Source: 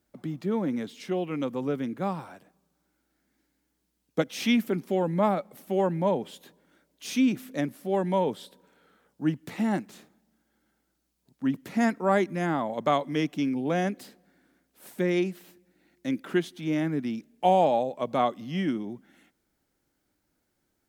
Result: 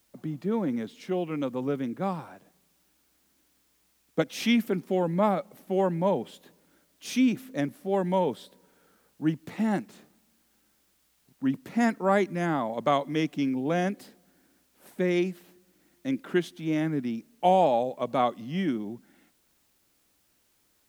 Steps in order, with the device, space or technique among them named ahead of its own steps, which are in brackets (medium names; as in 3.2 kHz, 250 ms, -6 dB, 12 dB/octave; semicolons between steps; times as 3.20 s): plain cassette with noise reduction switched in (tape noise reduction on one side only decoder only; wow and flutter 24 cents; white noise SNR 40 dB)